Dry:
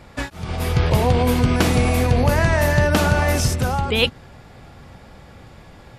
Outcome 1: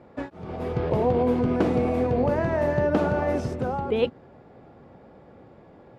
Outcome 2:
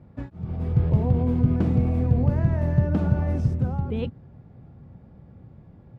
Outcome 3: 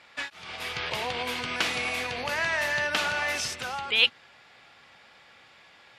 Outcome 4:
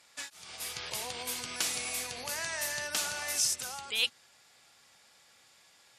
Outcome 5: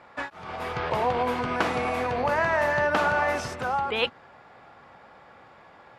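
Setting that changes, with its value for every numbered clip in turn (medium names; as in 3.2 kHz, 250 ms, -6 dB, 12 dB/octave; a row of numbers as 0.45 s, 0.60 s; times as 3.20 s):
band-pass filter, frequency: 400 Hz, 140 Hz, 2.8 kHz, 7.9 kHz, 1.1 kHz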